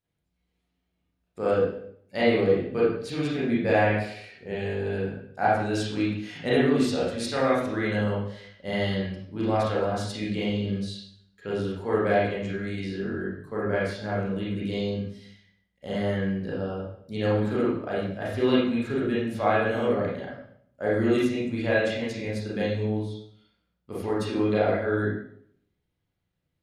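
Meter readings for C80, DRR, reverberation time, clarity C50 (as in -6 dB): 4.5 dB, -7.5 dB, 0.65 s, 0.5 dB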